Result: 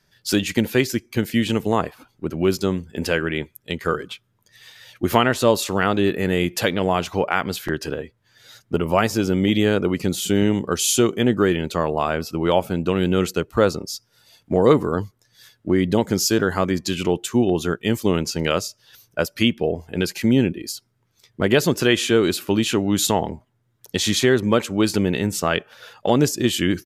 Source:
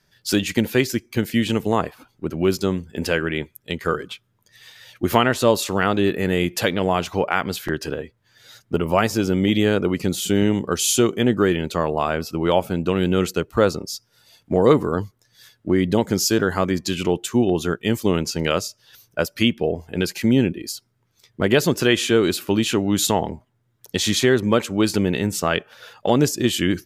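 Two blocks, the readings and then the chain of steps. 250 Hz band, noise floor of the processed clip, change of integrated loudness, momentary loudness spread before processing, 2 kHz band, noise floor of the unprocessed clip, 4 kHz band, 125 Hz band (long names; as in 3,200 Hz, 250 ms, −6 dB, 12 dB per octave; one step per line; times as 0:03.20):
0.0 dB, −66 dBFS, 0.0 dB, 10 LU, 0.0 dB, −66 dBFS, 0.0 dB, 0.0 dB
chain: downsampling to 32,000 Hz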